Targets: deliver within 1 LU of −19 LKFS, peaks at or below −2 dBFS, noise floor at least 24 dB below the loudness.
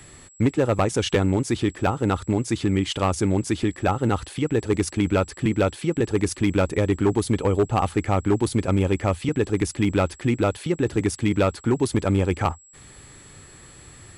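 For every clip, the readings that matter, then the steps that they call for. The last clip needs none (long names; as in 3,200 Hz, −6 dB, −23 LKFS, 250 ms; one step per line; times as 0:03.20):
share of clipped samples 1.2%; peaks flattened at −13.0 dBFS; interfering tone 7,700 Hz; level of the tone −49 dBFS; integrated loudness −23.0 LKFS; sample peak −13.0 dBFS; target loudness −19.0 LKFS
→ clipped peaks rebuilt −13 dBFS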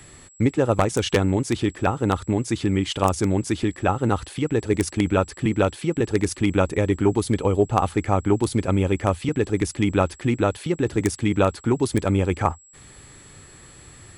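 share of clipped samples 0.0%; interfering tone 7,700 Hz; level of the tone −49 dBFS
→ notch filter 7,700 Hz, Q 30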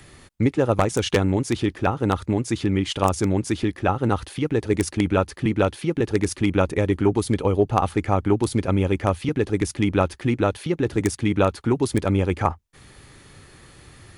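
interfering tone none found; integrated loudness −22.5 LKFS; sample peak −4.0 dBFS; target loudness −19.0 LKFS
→ level +3.5 dB
brickwall limiter −2 dBFS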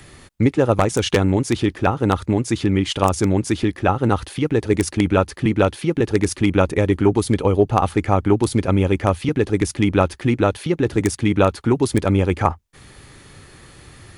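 integrated loudness −19.0 LKFS; sample peak −2.0 dBFS; background noise floor −46 dBFS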